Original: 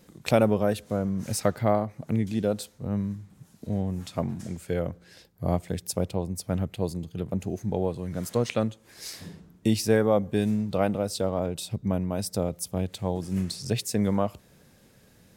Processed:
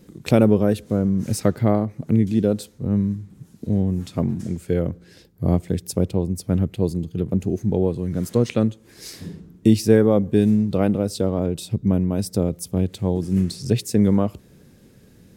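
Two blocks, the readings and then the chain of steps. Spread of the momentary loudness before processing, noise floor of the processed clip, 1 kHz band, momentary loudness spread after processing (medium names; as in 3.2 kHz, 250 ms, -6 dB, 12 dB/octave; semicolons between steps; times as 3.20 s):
10 LU, -52 dBFS, -0.5 dB, 9 LU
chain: resonant low shelf 500 Hz +6.5 dB, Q 1.5; trim +1 dB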